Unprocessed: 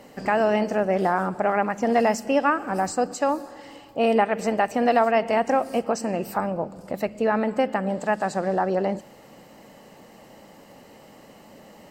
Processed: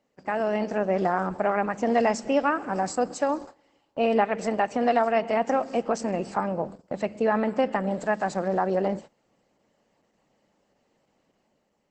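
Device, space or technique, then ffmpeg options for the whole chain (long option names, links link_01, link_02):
video call: -af "highpass=frequency=110:width=0.5412,highpass=frequency=110:width=1.3066,dynaudnorm=framelen=140:gausssize=9:maxgain=5.5dB,agate=range=-19dB:threshold=-32dB:ratio=16:detection=peak,volume=-6dB" -ar 48000 -c:a libopus -b:a 12k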